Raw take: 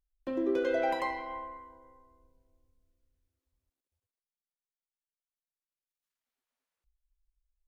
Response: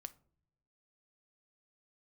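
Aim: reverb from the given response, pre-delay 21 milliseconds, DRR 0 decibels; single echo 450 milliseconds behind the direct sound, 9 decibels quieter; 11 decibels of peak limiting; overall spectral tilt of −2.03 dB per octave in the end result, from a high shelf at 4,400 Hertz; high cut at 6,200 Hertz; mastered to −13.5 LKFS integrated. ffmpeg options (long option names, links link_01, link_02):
-filter_complex "[0:a]lowpass=6200,highshelf=frequency=4400:gain=7.5,alimiter=level_in=5.5dB:limit=-24dB:level=0:latency=1,volume=-5.5dB,aecho=1:1:450:0.355,asplit=2[link_01][link_02];[1:a]atrim=start_sample=2205,adelay=21[link_03];[link_02][link_03]afir=irnorm=-1:irlink=0,volume=5dB[link_04];[link_01][link_04]amix=inputs=2:normalize=0,volume=22dB"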